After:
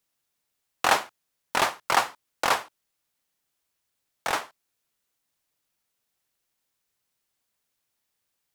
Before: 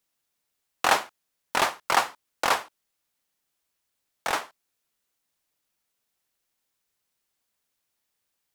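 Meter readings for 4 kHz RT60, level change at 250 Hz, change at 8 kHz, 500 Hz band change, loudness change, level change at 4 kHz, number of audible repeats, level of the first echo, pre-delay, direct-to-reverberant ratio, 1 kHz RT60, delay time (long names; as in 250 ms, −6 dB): no reverb audible, 0.0 dB, 0.0 dB, 0.0 dB, 0.0 dB, 0.0 dB, no echo audible, no echo audible, no reverb audible, no reverb audible, no reverb audible, no echo audible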